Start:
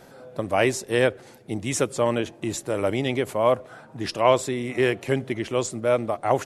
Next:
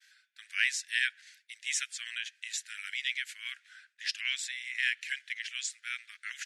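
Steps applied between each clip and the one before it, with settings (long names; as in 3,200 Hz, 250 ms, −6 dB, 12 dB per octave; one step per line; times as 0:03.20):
Butterworth high-pass 1,600 Hz 72 dB per octave
downward expander −55 dBFS
low-pass filter 6,800 Hz 12 dB per octave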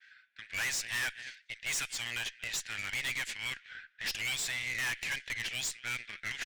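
low-pass that shuts in the quiet parts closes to 2,200 Hz, open at −29.5 dBFS
slap from a distant wall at 40 metres, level −24 dB
tube saturation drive 40 dB, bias 0.45
level +9 dB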